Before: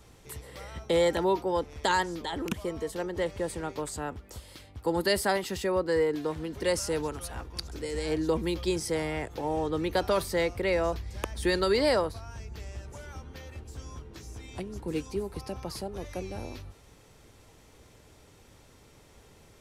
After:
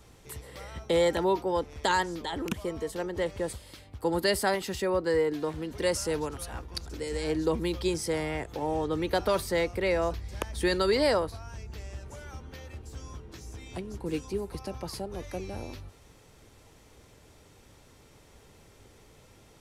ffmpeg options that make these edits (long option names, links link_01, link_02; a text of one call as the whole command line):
ffmpeg -i in.wav -filter_complex "[0:a]asplit=2[link_01][link_02];[link_01]atrim=end=3.532[link_03];[link_02]atrim=start=4.348[link_04];[link_03][link_04]acrossfade=duration=0.004:curve1=hsin:curve2=hsin" out.wav